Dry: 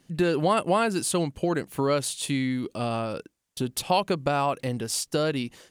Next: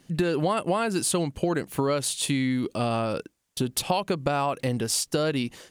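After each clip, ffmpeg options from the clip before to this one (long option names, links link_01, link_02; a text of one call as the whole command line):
ffmpeg -i in.wav -af "acompressor=threshold=-25dB:ratio=6,volume=4dB" out.wav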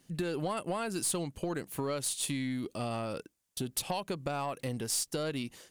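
ffmpeg -i in.wav -af "highshelf=frequency=6700:gain=8,aeval=exprs='(tanh(5.01*val(0)+0.15)-tanh(0.15))/5.01':channel_layout=same,volume=-8.5dB" out.wav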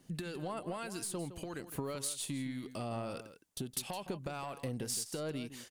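ffmpeg -i in.wav -filter_complex "[0:a]acompressor=threshold=-39dB:ratio=4,acrossover=split=1200[link_01][link_02];[link_01]aeval=exprs='val(0)*(1-0.5/2+0.5/2*cos(2*PI*1.7*n/s))':channel_layout=same[link_03];[link_02]aeval=exprs='val(0)*(1-0.5/2-0.5/2*cos(2*PI*1.7*n/s))':channel_layout=same[link_04];[link_03][link_04]amix=inputs=2:normalize=0,asplit=2[link_05][link_06];[link_06]adelay=163.3,volume=-12dB,highshelf=frequency=4000:gain=-3.67[link_07];[link_05][link_07]amix=inputs=2:normalize=0,volume=3.5dB" out.wav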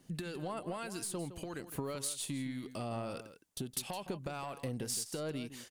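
ffmpeg -i in.wav -af anull out.wav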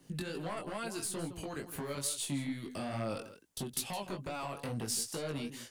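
ffmpeg -i in.wav -filter_complex "[0:a]acrossover=split=160|1200|6200[link_01][link_02][link_03][link_04];[link_02]aeval=exprs='0.015*(abs(mod(val(0)/0.015+3,4)-2)-1)':channel_layout=same[link_05];[link_01][link_05][link_03][link_04]amix=inputs=4:normalize=0,flanger=delay=17.5:depth=4.1:speed=2.3,volume=5.5dB" out.wav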